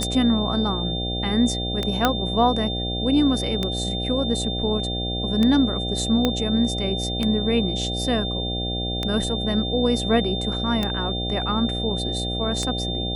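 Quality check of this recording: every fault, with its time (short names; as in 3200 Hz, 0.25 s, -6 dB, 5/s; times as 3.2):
buzz 60 Hz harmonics 13 -28 dBFS
tick 33 1/3 rpm -10 dBFS
tone 3600 Hz -28 dBFS
2.05 pop -4 dBFS
6.25 pop -7 dBFS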